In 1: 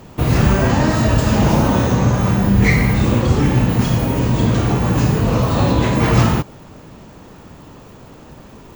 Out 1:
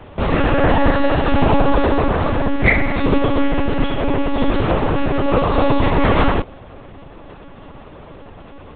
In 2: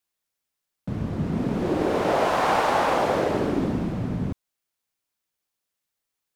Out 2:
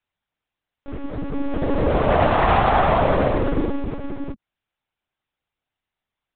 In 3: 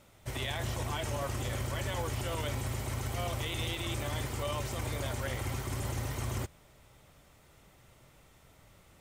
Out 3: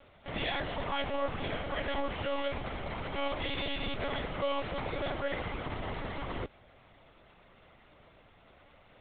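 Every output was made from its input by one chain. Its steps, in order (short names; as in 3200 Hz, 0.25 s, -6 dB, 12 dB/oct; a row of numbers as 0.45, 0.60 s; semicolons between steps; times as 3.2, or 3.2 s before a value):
elliptic high-pass 220 Hz, stop band 40 dB; air absorption 63 m; monotone LPC vocoder at 8 kHz 280 Hz; gain +5.5 dB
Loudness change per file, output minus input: -2.0, +4.0, 0.0 LU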